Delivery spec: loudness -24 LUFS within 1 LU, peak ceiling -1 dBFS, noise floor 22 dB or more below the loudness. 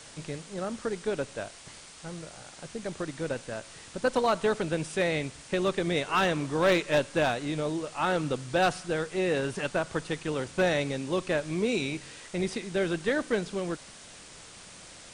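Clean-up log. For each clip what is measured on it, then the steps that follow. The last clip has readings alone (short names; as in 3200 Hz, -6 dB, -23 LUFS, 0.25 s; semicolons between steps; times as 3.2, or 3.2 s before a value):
clipped 0.3%; flat tops at -17.5 dBFS; noise floor -49 dBFS; noise floor target -52 dBFS; loudness -29.5 LUFS; peak -17.5 dBFS; loudness target -24.0 LUFS
-> clip repair -17.5 dBFS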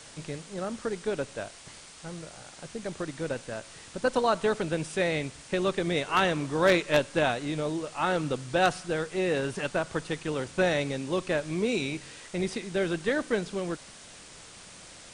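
clipped 0.0%; noise floor -49 dBFS; noise floor target -51 dBFS
-> noise print and reduce 6 dB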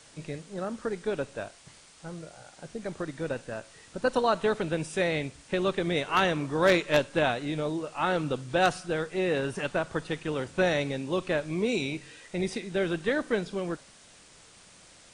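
noise floor -55 dBFS; loudness -29.0 LUFS; peak -8.5 dBFS; loudness target -24.0 LUFS
-> gain +5 dB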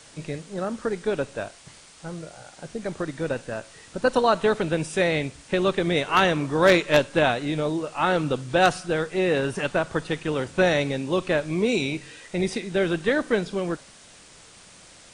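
loudness -24.0 LUFS; peak -3.5 dBFS; noise floor -50 dBFS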